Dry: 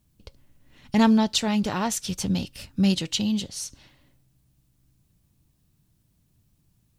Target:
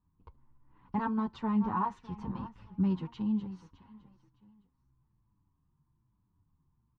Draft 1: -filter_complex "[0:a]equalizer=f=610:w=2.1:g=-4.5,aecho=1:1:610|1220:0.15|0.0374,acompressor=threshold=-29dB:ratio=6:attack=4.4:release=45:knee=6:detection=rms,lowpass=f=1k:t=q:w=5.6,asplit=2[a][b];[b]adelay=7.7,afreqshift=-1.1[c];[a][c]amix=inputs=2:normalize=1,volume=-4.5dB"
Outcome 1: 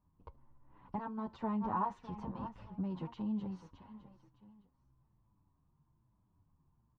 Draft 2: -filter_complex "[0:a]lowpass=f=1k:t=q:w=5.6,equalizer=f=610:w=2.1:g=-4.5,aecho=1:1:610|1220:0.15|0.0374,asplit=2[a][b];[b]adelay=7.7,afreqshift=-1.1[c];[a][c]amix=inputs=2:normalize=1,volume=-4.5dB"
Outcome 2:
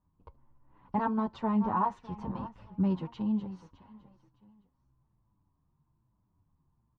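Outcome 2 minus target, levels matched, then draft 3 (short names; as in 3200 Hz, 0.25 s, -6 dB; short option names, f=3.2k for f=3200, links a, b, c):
500 Hz band +4.0 dB
-filter_complex "[0:a]lowpass=f=1k:t=q:w=5.6,equalizer=f=610:w=2.1:g=-16,aecho=1:1:610|1220:0.15|0.0374,asplit=2[a][b];[b]adelay=7.7,afreqshift=-1.1[c];[a][c]amix=inputs=2:normalize=1,volume=-4.5dB"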